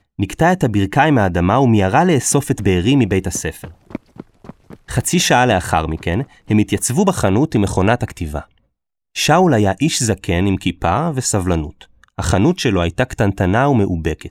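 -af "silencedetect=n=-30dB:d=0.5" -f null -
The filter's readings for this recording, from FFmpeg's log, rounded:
silence_start: 8.42
silence_end: 9.16 | silence_duration: 0.74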